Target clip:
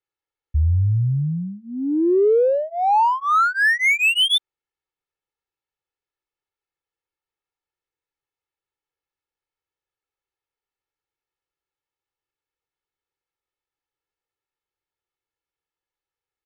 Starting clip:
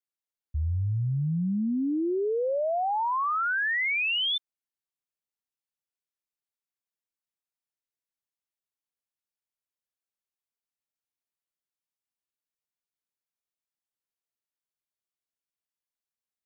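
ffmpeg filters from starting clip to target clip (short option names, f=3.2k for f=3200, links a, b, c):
-af "aecho=1:1:2.3:0.97,adynamicsmooth=sensitivity=7.5:basefreq=3.2k,volume=6dB"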